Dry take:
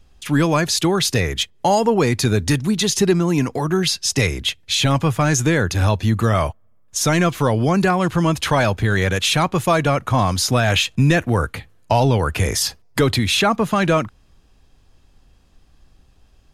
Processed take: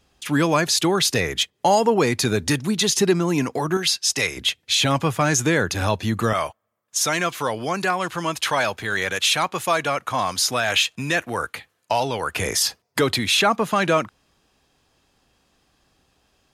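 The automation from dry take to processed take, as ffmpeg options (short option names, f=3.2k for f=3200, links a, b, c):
-af "asetnsamples=n=441:p=0,asendcmd='3.77 highpass f 790;4.37 highpass f 250;6.33 highpass f 870;12.34 highpass f 360',highpass=f=250:p=1"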